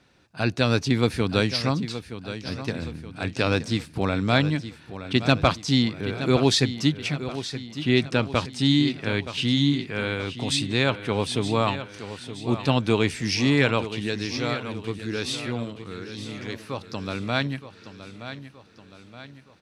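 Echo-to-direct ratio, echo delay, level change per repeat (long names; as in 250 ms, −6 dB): −11.0 dB, 921 ms, −6.0 dB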